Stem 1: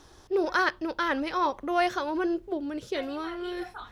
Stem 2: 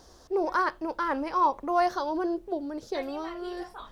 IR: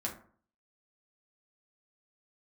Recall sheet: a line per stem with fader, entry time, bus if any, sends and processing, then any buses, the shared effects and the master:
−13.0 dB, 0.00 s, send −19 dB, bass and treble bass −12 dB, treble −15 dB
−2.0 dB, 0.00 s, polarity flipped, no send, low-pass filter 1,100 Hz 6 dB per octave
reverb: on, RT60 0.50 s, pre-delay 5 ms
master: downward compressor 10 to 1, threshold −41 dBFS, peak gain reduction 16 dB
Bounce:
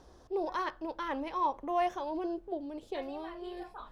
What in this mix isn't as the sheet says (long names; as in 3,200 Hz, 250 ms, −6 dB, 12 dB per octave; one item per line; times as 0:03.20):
stem 1: missing bass and treble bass −12 dB, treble −15 dB
master: missing downward compressor 10 to 1, threshold −41 dBFS, peak gain reduction 16 dB